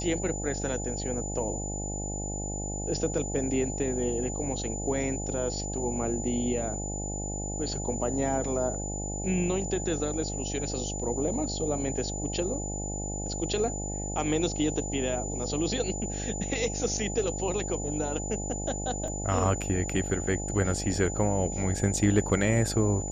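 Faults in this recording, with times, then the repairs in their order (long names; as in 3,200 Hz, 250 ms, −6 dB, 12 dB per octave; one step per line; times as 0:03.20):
mains buzz 50 Hz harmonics 17 −35 dBFS
whistle 7,000 Hz −36 dBFS
0:19.08: drop-out 2.8 ms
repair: notch filter 7,000 Hz, Q 30
hum removal 50 Hz, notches 17
repair the gap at 0:19.08, 2.8 ms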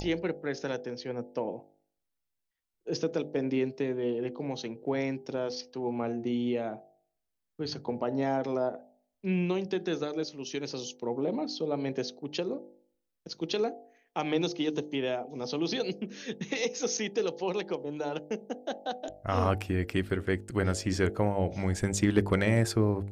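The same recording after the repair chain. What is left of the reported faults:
none of them is left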